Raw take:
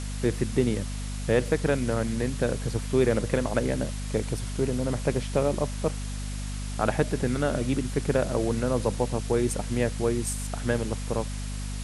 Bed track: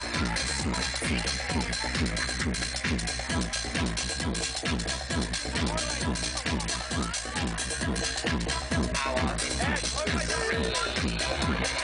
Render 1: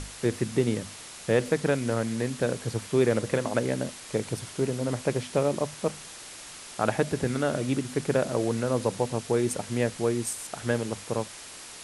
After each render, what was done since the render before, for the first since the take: hum notches 50/100/150/200/250 Hz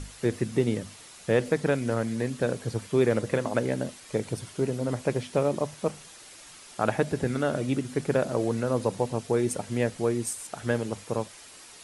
noise reduction 7 dB, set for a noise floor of -44 dBFS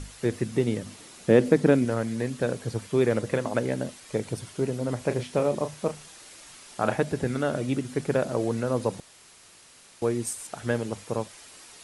0.86–1.85 s: peaking EQ 270 Hz +9.5 dB 1.6 oct; 4.98–6.95 s: doubling 33 ms -9.5 dB; 9.00–10.02 s: room tone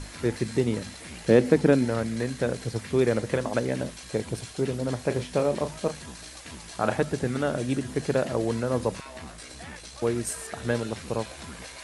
add bed track -14 dB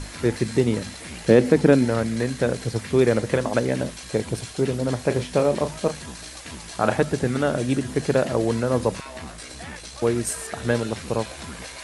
trim +4.5 dB; peak limiter -3 dBFS, peak gain reduction 2.5 dB

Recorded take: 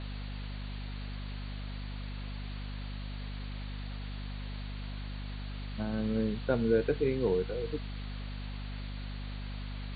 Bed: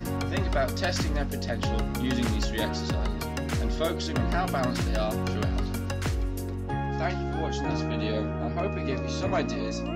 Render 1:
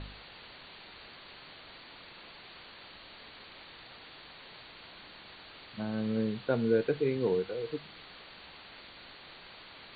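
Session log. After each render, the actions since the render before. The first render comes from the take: de-hum 50 Hz, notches 5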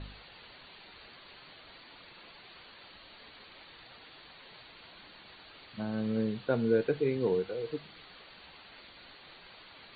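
noise reduction 6 dB, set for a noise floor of -52 dBFS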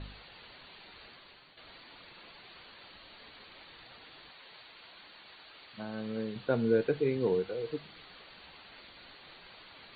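1.06–1.57 s: fade out, to -8.5 dB; 4.30–6.36 s: bass shelf 310 Hz -9.5 dB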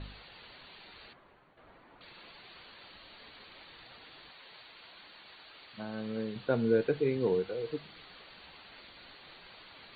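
1.13–2.01 s: low-pass 1.3 kHz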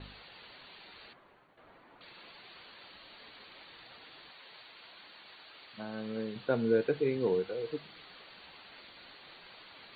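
gate with hold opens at -54 dBFS; bass shelf 100 Hz -8.5 dB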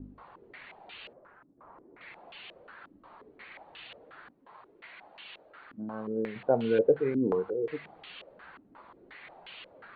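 step-sequenced low-pass 5.6 Hz 280–2900 Hz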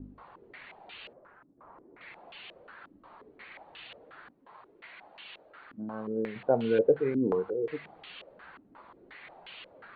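no audible change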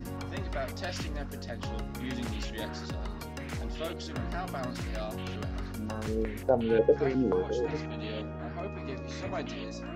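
add bed -8.5 dB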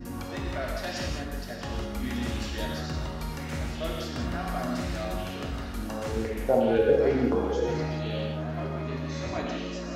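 thinning echo 433 ms, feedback 83%, level -18 dB; gated-style reverb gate 220 ms flat, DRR -1.5 dB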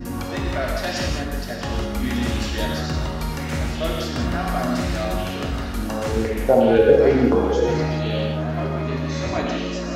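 trim +8 dB; peak limiter -3 dBFS, peak gain reduction 2 dB

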